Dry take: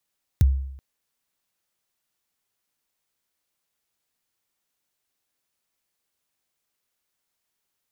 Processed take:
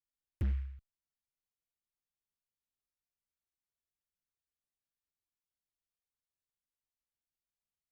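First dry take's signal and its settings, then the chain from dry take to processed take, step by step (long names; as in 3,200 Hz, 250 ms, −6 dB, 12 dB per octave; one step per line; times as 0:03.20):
synth kick length 0.38 s, from 140 Hz, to 67 Hz, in 23 ms, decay 0.75 s, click on, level −10.5 dB
guitar amp tone stack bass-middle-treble 10-0-1
hard clipping −28.5 dBFS
short delay modulated by noise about 1,800 Hz, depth 0.073 ms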